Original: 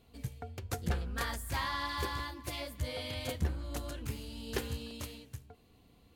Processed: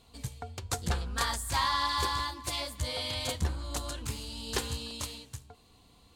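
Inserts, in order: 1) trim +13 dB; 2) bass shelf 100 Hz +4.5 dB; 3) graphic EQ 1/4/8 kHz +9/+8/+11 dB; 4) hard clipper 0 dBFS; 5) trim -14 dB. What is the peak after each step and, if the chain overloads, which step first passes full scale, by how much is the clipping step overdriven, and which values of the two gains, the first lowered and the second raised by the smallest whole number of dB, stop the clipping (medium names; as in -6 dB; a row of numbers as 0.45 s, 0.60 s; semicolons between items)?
-7.0 dBFS, -6.5 dBFS, -1.5 dBFS, -1.5 dBFS, -15.5 dBFS; nothing clips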